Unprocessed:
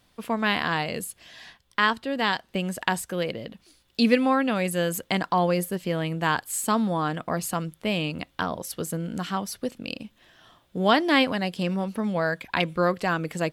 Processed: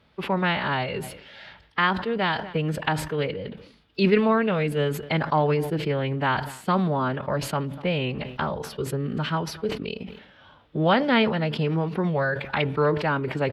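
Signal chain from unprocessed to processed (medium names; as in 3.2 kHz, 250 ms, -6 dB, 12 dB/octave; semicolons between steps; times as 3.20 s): high-pass 51 Hz; treble shelf 3.5 kHz +7.5 dB; in parallel at -1.5 dB: compression, threshold -31 dBFS, peak gain reduction 16.5 dB; on the sum: formant-preserving pitch shift -3 st; distance through air 360 m; echo from a far wall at 42 m, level -26 dB; on a send at -23 dB: reverberation RT60 0.60 s, pre-delay 3 ms; on the sum: decay stretcher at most 81 dB/s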